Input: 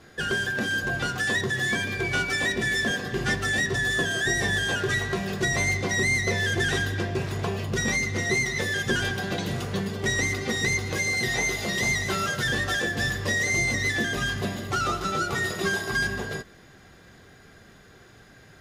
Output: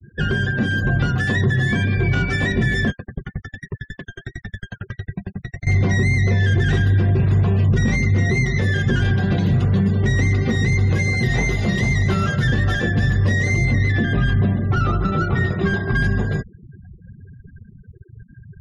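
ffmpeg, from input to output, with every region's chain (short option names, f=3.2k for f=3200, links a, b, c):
-filter_complex "[0:a]asettb=1/sr,asplit=3[a][b][c];[a]atrim=end=2.904[d];[b]atrim=start=2.9:end=5.67,asetpts=PTS-STARTPTS,afade=t=in:d=0.004:c=qsin,afade=t=out:st=2.766:d=0.004:c=qsin,lowpass=7.1k,asoftclip=type=hard:threshold=-30.5dB,aeval=exprs='val(0)*pow(10,-37*if(lt(mod(11*n/s,1),2*abs(11)/1000),1-mod(11*n/s,1)/(2*abs(11)/1000),(mod(11*n/s,1)-2*abs(11)/1000)/(1-2*abs(11)/1000))/20)':c=same[e];[c]atrim=start=5.666[f];[d][e]acrossfade=d=0.004:c1=hsin:c2=qsin[g];[g][f]acrossfade=d=0.004:c1=qsin:c2=hsin,asettb=1/sr,asplit=3[h][i][j];[h]atrim=end=13.654[k];[i]atrim=start=13.65:end=16.04,asetpts=PTS-STARTPTS,afade=t=in:d=0.004:c=qsin,afade=t=out:st=2.386:d=0.004:c=qsin,lowpass=f=11k:w=0.5412,lowpass=f=11k:w=1.3066,adynamicsmooth=sensitivity=3:basefreq=2.8k,aecho=1:1:182:0.0944,atrim=end_sample=105399[l];[j]atrim=start=16.036[m];[k][l]acrossfade=d=0.004:c1=hsin:c2=qsin[n];[n][m]acrossfade=d=0.004:c1=qsin:c2=hsin,afftfilt=real='re*gte(hypot(re,im),0.0126)':imag='im*gte(hypot(re,im),0.0126)':win_size=1024:overlap=0.75,bass=f=250:g=15,treble=f=4k:g=-9,alimiter=limit=-13dB:level=0:latency=1:release=32,volume=3dB"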